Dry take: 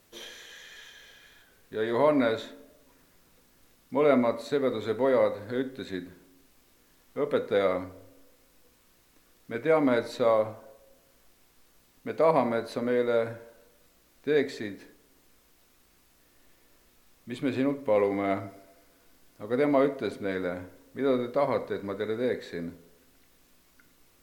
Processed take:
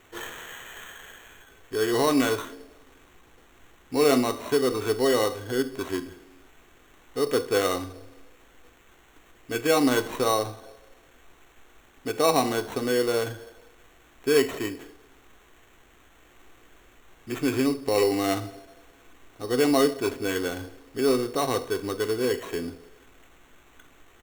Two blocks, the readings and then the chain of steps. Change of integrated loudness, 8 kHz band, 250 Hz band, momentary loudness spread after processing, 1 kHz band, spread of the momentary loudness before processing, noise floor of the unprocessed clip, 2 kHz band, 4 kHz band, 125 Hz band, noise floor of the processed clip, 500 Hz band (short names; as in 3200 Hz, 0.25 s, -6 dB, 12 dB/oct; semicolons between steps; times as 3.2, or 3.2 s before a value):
+2.5 dB, n/a, +3.5 dB, 17 LU, +3.0 dB, 20 LU, -63 dBFS, +4.5 dB, +10.5 dB, +3.5 dB, -57 dBFS, +1.5 dB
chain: dynamic EQ 600 Hz, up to -5 dB, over -37 dBFS, Q 0.76; comb 2.6 ms, depth 63%; sample-and-hold 9×; gain +5 dB